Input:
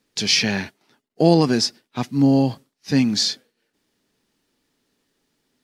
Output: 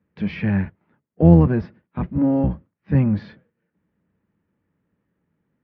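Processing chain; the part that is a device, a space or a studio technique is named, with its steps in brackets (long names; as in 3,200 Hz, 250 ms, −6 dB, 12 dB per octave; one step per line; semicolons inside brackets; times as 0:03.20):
spectral tilt −3 dB per octave
sub-octave bass pedal (sub-octave generator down 1 octave, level −2 dB; loudspeaker in its box 84–2,200 Hz, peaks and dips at 120 Hz −8 dB, 180 Hz +6 dB, 260 Hz −8 dB, 400 Hz −7 dB, 730 Hz −6 dB)
level −2.5 dB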